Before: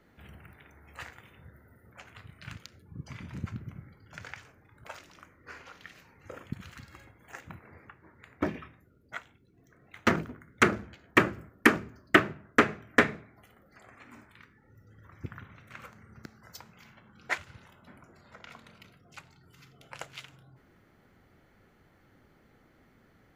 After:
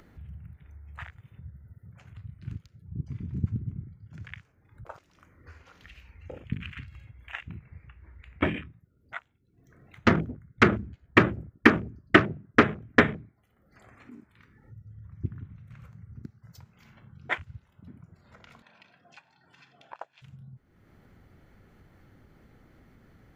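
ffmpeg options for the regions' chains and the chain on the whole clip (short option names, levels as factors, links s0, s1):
-filter_complex "[0:a]asettb=1/sr,asplit=3[s0][s1][s2];[s0]atrim=end=5.884[s3];[s1]atrim=start=5.88:end=8.62,asetpts=PTS-STARTPTS,afade=t=in:d=0.004:c=qsin,afade=t=out:st=2.736:d=0.004:c=qsin,equalizer=f=2700:t=o:w=0.99:g=14.5,bandreject=f=50:t=h:w=6,bandreject=f=100:t=h:w=6,bandreject=f=150:t=h:w=6,bandreject=f=200:t=h:w=6,bandreject=f=250:t=h:w=6,bandreject=f=300:t=h:w=6,bandreject=f=350:t=h:w=6,bandreject=f=400:t=h:w=6,aeval=exprs='val(0)+0.000631*(sin(2*PI*60*n/s)+sin(2*PI*2*60*n/s)/2+sin(2*PI*3*60*n/s)/3+sin(2*PI*4*60*n/s)/4+sin(2*PI*5*60*n/s)/5)':c=same[s4];[s2]atrim=start=8.616[s5];[s3][s4]acrossfade=d=0.004:c1=hsin:c2=qsin[s6];[s6][s5]acrossfade=d=0.004:c1=qsin:c2=hsin,asettb=1/sr,asplit=3[s7][s8][s9];[s7]atrim=end=18.624[s10];[s8]atrim=start=18.62:end=20.22,asetpts=PTS-STARTPTS,afade=t=in:d=0.004:c=qsin,afade=t=out:st=1.596:d=0.004:c=qsin,highpass=420,lowpass=4000,aecho=1:1:1.2:0.59,atrim=end_sample=70560[s11];[s9]atrim=start=20.216[s12];[s10][s11]acrossfade=d=0.004:c1=hsin:c2=qsin[s13];[s13][s12]acrossfade=d=0.004:c1=qsin:c2=hsin,afwtdn=0.00891,lowshelf=f=190:g=9.5,acompressor=mode=upward:threshold=0.00708:ratio=2.5,volume=1.19"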